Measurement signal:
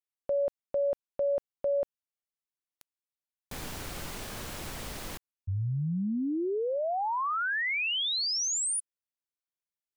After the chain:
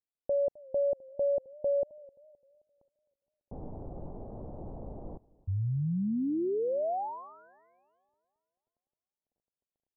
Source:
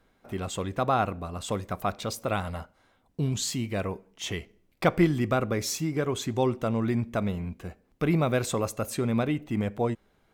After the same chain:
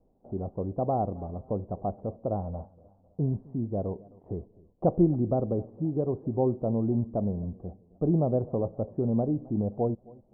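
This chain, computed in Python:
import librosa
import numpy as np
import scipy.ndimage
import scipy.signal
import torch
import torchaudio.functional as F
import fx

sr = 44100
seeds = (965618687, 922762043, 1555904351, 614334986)

y = fx.dmg_crackle(x, sr, seeds[0], per_s=13.0, level_db=-57.0)
y = scipy.signal.sosfilt(scipy.signal.butter(6, 790.0, 'lowpass', fs=sr, output='sos'), y)
y = fx.echo_warbled(y, sr, ms=262, feedback_pct=42, rate_hz=2.8, cents=116, wet_db=-23)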